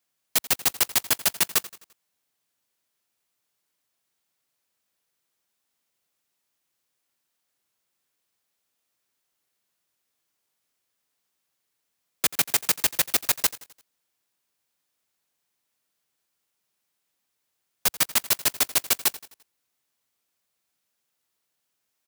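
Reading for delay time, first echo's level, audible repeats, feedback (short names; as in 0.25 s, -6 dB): 86 ms, -18.0 dB, 3, 47%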